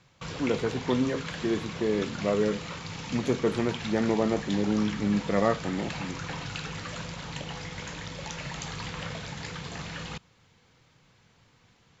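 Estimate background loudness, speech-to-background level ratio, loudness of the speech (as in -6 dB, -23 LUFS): -37.0 LUFS, 8.0 dB, -29.0 LUFS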